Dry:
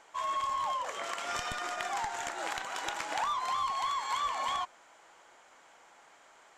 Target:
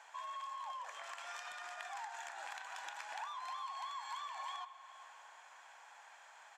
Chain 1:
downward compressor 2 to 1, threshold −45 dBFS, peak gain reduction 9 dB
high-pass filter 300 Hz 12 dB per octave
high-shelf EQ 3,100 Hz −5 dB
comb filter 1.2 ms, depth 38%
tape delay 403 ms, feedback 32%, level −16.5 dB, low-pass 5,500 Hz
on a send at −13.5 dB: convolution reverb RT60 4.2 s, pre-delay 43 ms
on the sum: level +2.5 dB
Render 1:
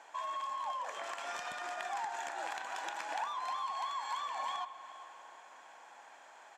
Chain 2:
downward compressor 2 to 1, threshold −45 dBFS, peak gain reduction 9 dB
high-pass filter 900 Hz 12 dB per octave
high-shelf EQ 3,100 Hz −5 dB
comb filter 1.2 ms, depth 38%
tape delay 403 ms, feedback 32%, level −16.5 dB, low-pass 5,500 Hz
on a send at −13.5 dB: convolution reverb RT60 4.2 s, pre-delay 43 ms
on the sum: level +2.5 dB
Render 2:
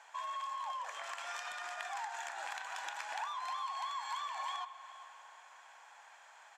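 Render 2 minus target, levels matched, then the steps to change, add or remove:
downward compressor: peak gain reduction −4.5 dB
change: downward compressor 2 to 1, threshold −54 dBFS, peak gain reduction 13.5 dB

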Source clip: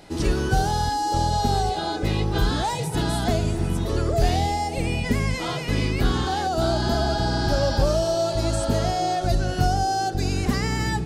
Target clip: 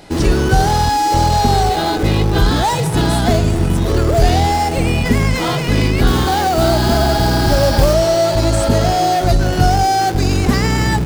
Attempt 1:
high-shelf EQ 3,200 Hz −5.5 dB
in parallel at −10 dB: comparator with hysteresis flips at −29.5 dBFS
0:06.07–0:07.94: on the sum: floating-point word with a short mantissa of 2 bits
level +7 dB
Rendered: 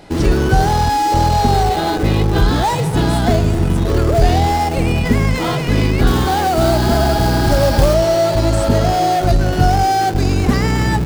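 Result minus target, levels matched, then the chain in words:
8,000 Hz band −3.0 dB
in parallel at −10 dB: comparator with hysteresis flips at −29.5 dBFS
0:06.07–0:07.94: on the sum: floating-point word with a short mantissa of 2 bits
level +7 dB

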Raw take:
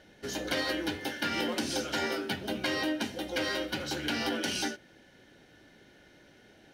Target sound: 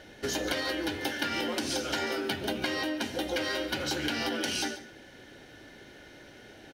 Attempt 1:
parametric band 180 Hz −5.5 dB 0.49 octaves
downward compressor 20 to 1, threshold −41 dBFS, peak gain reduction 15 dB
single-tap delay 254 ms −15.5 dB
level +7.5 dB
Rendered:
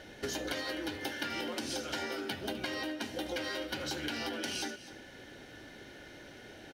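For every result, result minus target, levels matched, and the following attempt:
echo 111 ms late; downward compressor: peak gain reduction +5.5 dB
parametric band 180 Hz −5.5 dB 0.49 octaves
downward compressor 20 to 1, threshold −41 dBFS, peak gain reduction 15 dB
single-tap delay 143 ms −15.5 dB
level +7.5 dB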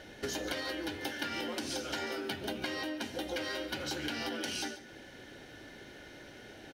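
downward compressor: peak gain reduction +5.5 dB
parametric band 180 Hz −5.5 dB 0.49 octaves
downward compressor 20 to 1, threshold −35 dBFS, peak gain reduction 9 dB
single-tap delay 143 ms −15.5 dB
level +7.5 dB

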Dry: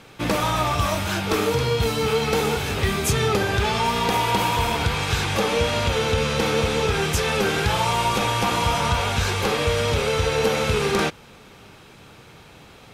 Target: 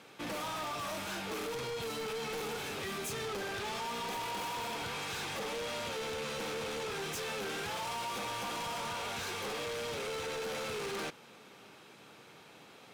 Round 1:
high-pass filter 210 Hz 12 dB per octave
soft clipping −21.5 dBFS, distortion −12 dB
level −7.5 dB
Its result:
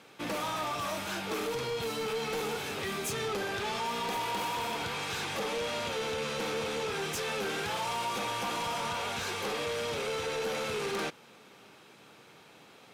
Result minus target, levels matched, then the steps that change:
soft clipping: distortion −5 dB
change: soft clipping −28.5 dBFS, distortion −7 dB

